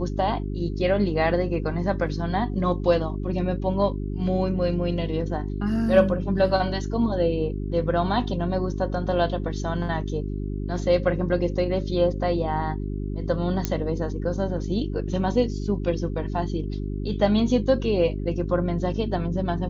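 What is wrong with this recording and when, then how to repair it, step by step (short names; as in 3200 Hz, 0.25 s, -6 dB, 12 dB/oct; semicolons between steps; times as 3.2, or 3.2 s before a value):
hum 50 Hz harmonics 8 -29 dBFS
13.65 pop -9 dBFS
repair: de-click; de-hum 50 Hz, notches 8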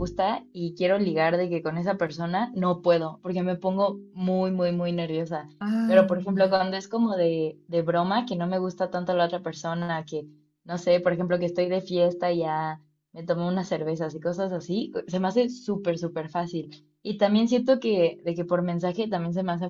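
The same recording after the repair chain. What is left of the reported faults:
none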